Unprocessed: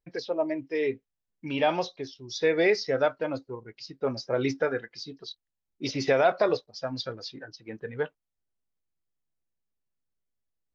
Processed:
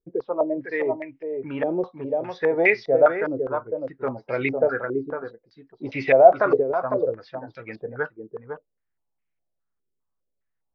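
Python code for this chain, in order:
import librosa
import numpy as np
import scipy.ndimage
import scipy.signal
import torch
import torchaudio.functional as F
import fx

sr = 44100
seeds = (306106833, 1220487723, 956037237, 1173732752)

y = x + 10.0 ** (-6.5 / 20.0) * np.pad(x, (int(504 * sr / 1000.0), 0))[:len(x)]
y = fx.filter_held_lowpass(y, sr, hz=4.9, low_hz=410.0, high_hz=2300.0)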